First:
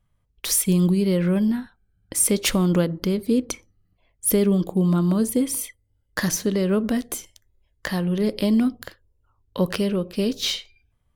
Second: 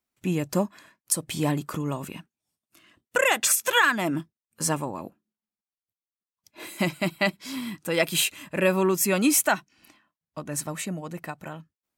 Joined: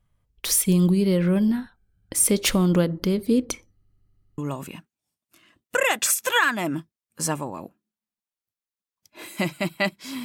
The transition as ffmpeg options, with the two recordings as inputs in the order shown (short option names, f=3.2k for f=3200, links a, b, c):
-filter_complex "[0:a]apad=whole_dur=10.24,atrim=end=10.24,asplit=8[a][b][c][d][e][f][g][h];[a]atrim=end=3.822[i];[b]atrim=start=3.738:end=3.822[j];[c]atrim=start=3.738:end=3.822[k];[d]atrim=start=3.738:end=3.822[l];[e]atrim=start=3.738:end=3.822[m];[f]atrim=start=3.738:end=3.822[n];[g]atrim=start=3.738:end=3.822[o];[h]atrim=start=3.738:end=3.822[p];[1:a]atrim=start=1.788:end=7.65[q];[i][j]acrossfade=d=0.004:c1=hsin:c2=hsin[r];[r][k]acrossfade=d=0.004:c1=hsin:c2=hsin[s];[s][l]acrossfade=d=0.004:c1=hsin:c2=hsin[t];[t][m]acrossfade=d=0.004:c1=hsin:c2=hsin[u];[u][n]acrossfade=d=0.004:c1=hsin:c2=hsin[v];[v][o]acrossfade=d=0.004:c1=hsin:c2=hsin[w];[w][p]acrossfade=d=0.004:c1=hsin:c2=hsin[x];[x][q]acrossfade=d=0.004:c1=hsin:c2=hsin"